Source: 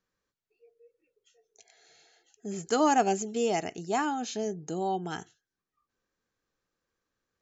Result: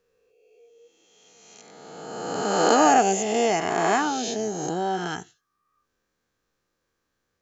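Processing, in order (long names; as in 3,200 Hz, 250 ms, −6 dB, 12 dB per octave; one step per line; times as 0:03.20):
peak hold with a rise ahead of every peak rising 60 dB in 1.82 s
level +3 dB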